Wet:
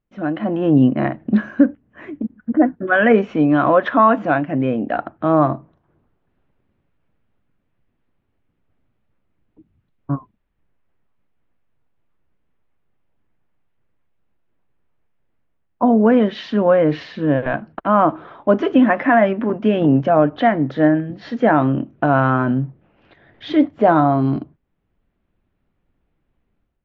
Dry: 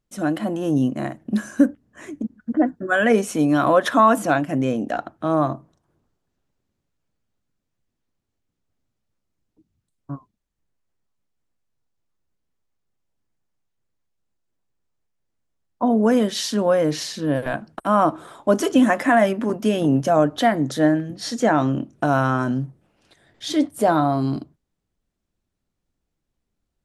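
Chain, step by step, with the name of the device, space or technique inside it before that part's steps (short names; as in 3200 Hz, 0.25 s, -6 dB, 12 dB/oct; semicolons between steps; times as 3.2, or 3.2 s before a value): action camera in a waterproof case (LPF 2800 Hz 24 dB/oct; AGC gain up to 11 dB; gain -1 dB; AAC 48 kbps 16000 Hz)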